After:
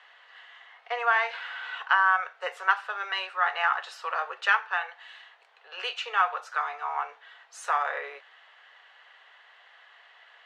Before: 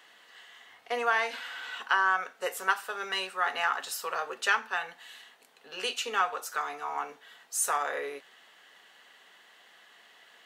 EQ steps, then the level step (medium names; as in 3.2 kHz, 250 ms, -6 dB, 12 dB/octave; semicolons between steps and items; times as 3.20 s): Bessel high-pass 850 Hz, order 6; low-pass 3.6 kHz 12 dB/octave; treble shelf 2.5 kHz -8.5 dB; +7.0 dB